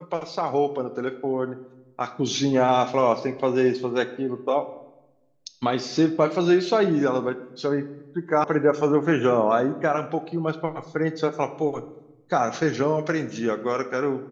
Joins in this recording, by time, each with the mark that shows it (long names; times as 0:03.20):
0:08.44: cut off before it has died away